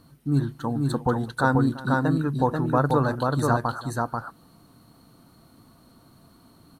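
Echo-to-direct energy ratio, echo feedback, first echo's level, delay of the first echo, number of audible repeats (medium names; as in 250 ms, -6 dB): -3.0 dB, no regular repeats, -19.0 dB, 338 ms, 2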